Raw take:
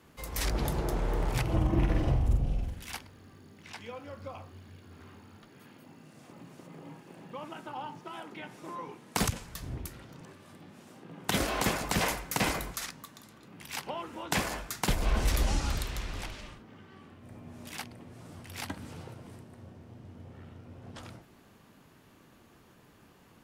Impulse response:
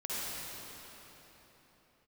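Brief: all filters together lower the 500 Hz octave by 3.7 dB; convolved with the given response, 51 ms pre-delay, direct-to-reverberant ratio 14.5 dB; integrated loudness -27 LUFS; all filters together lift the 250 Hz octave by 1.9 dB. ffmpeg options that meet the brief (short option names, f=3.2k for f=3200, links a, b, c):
-filter_complex "[0:a]equalizer=f=250:t=o:g=4.5,equalizer=f=500:t=o:g=-6.5,asplit=2[a][b];[1:a]atrim=start_sample=2205,adelay=51[c];[b][c]afir=irnorm=-1:irlink=0,volume=-19.5dB[d];[a][d]amix=inputs=2:normalize=0,volume=6dB"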